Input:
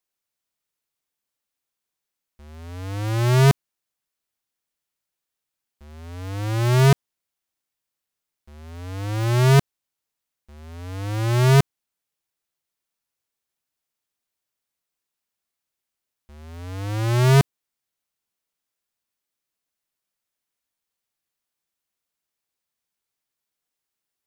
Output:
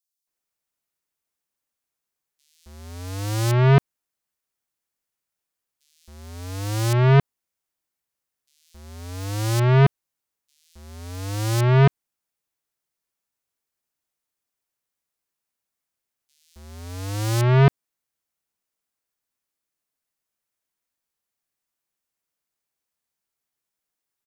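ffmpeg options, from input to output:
-filter_complex "[0:a]acrossover=split=3500[s0][s1];[s0]adelay=270[s2];[s2][s1]amix=inputs=2:normalize=0"

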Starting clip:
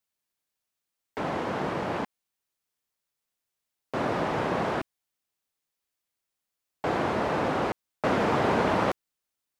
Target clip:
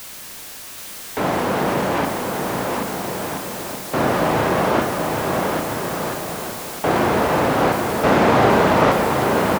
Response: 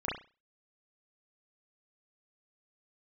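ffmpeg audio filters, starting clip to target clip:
-filter_complex "[0:a]aeval=exprs='val(0)+0.5*0.0158*sgn(val(0))':c=same,aecho=1:1:780|1326|1708|1976|2163:0.631|0.398|0.251|0.158|0.1,asplit=2[s0][s1];[1:a]atrim=start_sample=2205,asetrate=38808,aresample=44100[s2];[s1][s2]afir=irnorm=-1:irlink=0,volume=0.2[s3];[s0][s3]amix=inputs=2:normalize=0,volume=2"

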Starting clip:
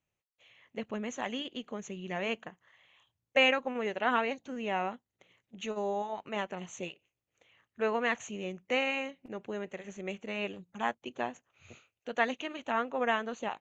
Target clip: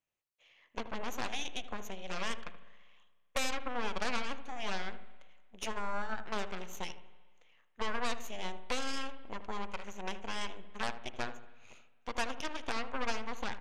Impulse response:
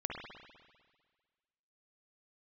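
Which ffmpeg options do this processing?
-filter_complex "[0:a]acompressor=threshold=0.02:ratio=3,aeval=exprs='0.112*(cos(1*acos(clip(val(0)/0.112,-1,1)))-cos(1*PI/2))+0.0447*(cos(8*acos(clip(val(0)/0.112,-1,1)))-cos(8*PI/2))':c=same,equalizer=f=89:t=o:w=2.9:g=-10,asplit=2[s0][s1];[s1]adelay=78,lowpass=f=930:p=1,volume=0.335,asplit=2[s2][s3];[s3]adelay=78,lowpass=f=930:p=1,volume=0.46,asplit=2[s4][s5];[s5]adelay=78,lowpass=f=930:p=1,volume=0.46,asplit=2[s6][s7];[s7]adelay=78,lowpass=f=930:p=1,volume=0.46,asplit=2[s8][s9];[s9]adelay=78,lowpass=f=930:p=1,volume=0.46[s10];[s0][s2][s4][s6][s8][s10]amix=inputs=6:normalize=0,asplit=2[s11][s12];[1:a]atrim=start_sample=2205[s13];[s12][s13]afir=irnorm=-1:irlink=0,volume=0.178[s14];[s11][s14]amix=inputs=2:normalize=0,volume=0.596"

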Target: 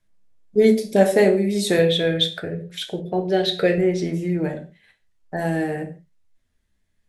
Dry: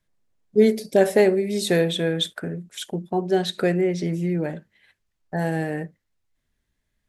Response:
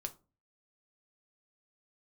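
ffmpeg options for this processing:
-filter_complex "[0:a]asettb=1/sr,asplit=3[s0][s1][s2];[s0]atrim=end=1.784[s3];[s1]atrim=start=1.78:end=3.78,asetpts=PTS-STARTPTS,afade=t=in:d=0.004:c=qsin,afade=t=out:st=1.996:d=0.004:c=qsin,equalizer=f=125:t=o:w=1:g=8,equalizer=f=250:t=o:w=1:g=-10,equalizer=f=500:t=o:w=1:g=8,equalizer=f=1000:t=o:w=1:g=-6,equalizer=f=2000:t=o:w=1:g=4,equalizer=f=4000:t=o:w=1:g=5,equalizer=f=8000:t=o:w=1:g=-9[s4];[s2]atrim=start=3.776[s5];[s3][s4]acrossfade=d=0.004:c1=hsin:c2=qsin[s6];[s6][s5]acrossfade=d=0.004:c1=qsin:c2=hsin[s7];[1:a]atrim=start_sample=2205,afade=t=out:st=0.14:d=0.01,atrim=end_sample=6615,asetrate=23373,aresample=44100[s8];[s7][s8]afir=irnorm=-1:irlink=0"

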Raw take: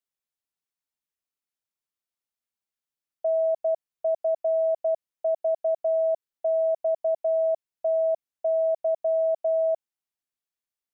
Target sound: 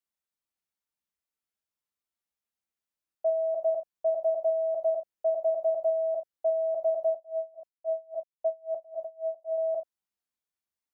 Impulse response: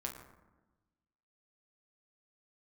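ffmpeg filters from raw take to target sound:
-filter_complex "[1:a]atrim=start_sample=2205,atrim=end_sample=3969[s0];[0:a][s0]afir=irnorm=-1:irlink=0,asettb=1/sr,asplit=3[s1][s2][s3];[s1]atrim=end=7.114[s4];[s2]atrim=start=7.11:end=9.58,asetpts=PTS-STARTPTS,afade=t=in:d=0.004:c=qsin,afade=t=out:st=2.466:d=0.004:c=qsin,aeval=exprs='val(0)*pow(10,-28*(0.5-0.5*cos(2*PI*3.7*n/s))/20)':c=same[s5];[s3]atrim=start=9.576[s6];[s4][s5]acrossfade=d=0.004:c1=hsin:c2=qsin[s7];[s7][s6]acrossfade=d=0.004:c1=qsin:c2=hsin"

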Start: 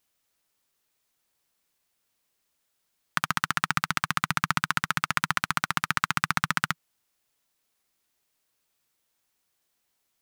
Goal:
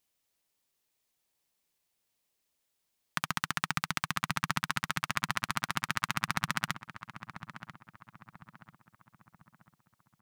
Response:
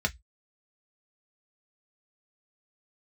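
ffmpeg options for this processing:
-filter_complex "[0:a]equalizer=f=1400:w=2.6:g=-5,asplit=2[s0][s1];[s1]adelay=991,lowpass=f=1500:p=1,volume=0.282,asplit=2[s2][s3];[s3]adelay=991,lowpass=f=1500:p=1,volume=0.49,asplit=2[s4][s5];[s5]adelay=991,lowpass=f=1500:p=1,volume=0.49,asplit=2[s6][s7];[s7]adelay=991,lowpass=f=1500:p=1,volume=0.49,asplit=2[s8][s9];[s9]adelay=991,lowpass=f=1500:p=1,volume=0.49[s10];[s2][s4][s6][s8][s10]amix=inputs=5:normalize=0[s11];[s0][s11]amix=inputs=2:normalize=0,volume=0.631"

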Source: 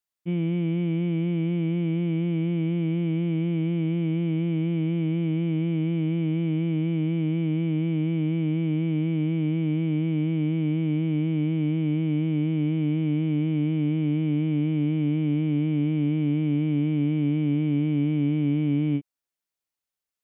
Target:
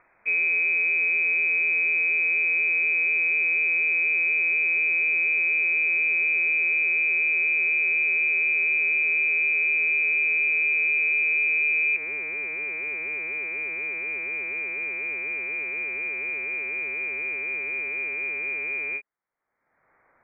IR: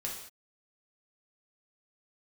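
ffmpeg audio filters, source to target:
-af "acompressor=mode=upward:threshold=0.0141:ratio=2.5,asetnsamples=n=441:p=0,asendcmd='11.96 highpass f 590',highpass=190,lowpass=f=2300:t=q:w=0.5098,lowpass=f=2300:t=q:w=0.6013,lowpass=f=2300:t=q:w=0.9,lowpass=f=2300:t=q:w=2.563,afreqshift=-2700,alimiter=level_in=1.12:limit=0.0631:level=0:latency=1:release=67,volume=0.891,volume=2.37"

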